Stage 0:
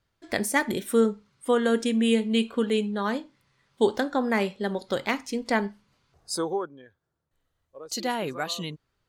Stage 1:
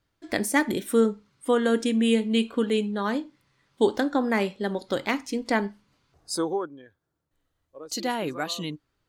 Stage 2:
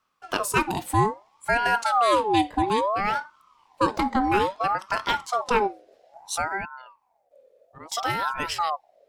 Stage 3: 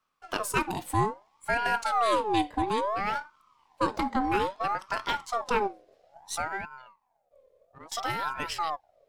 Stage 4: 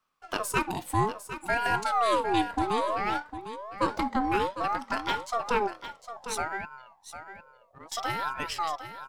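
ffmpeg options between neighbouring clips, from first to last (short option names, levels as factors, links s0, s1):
-af "equalizer=f=300:w=6.4:g=8"
-af "asubboost=boost=10:cutoff=130,aeval=exprs='val(0)*sin(2*PI*860*n/s+860*0.4/0.6*sin(2*PI*0.6*n/s))':c=same,volume=1.5"
-af "aeval=exprs='if(lt(val(0),0),0.708*val(0),val(0))':c=same,volume=0.668"
-af "aecho=1:1:754:0.282"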